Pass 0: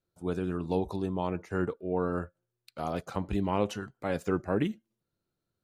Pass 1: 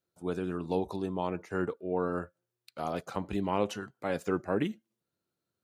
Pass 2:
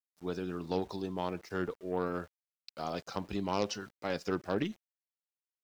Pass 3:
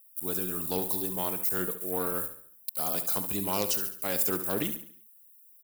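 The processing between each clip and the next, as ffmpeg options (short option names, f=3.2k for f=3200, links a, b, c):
-af "highpass=f=180:p=1"
-af "aeval=exprs='0.2*(cos(1*acos(clip(val(0)/0.2,-1,1)))-cos(1*PI/2))+0.02*(cos(6*acos(clip(val(0)/0.2,-1,1)))-cos(6*PI/2))+0.0158*(cos(8*acos(clip(val(0)/0.2,-1,1)))-cos(8*PI/2))':c=same,lowpass=f=5.2k:t=q:w=5.3,aeval=exprs='val(0)*gte(abs(val(0)),0.00251)':c=same,volume=-3.5dB"
-filter_complex "[0:a]crystalizer=i=2.5:c=0,asplit=2[a][b];[b]aecho=0:1:70|140|210|280|350:0.282|0.124|0.0546|0.024|0.0106[c];[a][c]amix=inputs=2:normalize=0,aexciter=amount=13.9:drive=6.6:freq=8.2k"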